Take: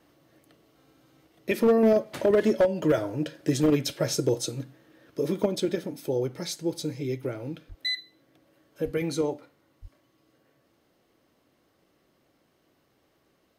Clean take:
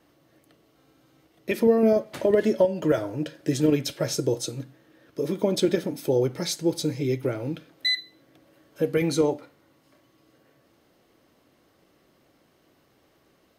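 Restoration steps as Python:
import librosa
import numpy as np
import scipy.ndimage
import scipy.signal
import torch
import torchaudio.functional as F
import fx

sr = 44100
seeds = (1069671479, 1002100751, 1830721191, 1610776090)

y = fx.fix_declip(x, sr, threshold_db=-15.0)
y = fx.fix_deplosive(y, sr, at_s=(7.68, 8.84, 9.81))
y = fx.fix_level(y, sr, at_s=5.46, step_db=5.0)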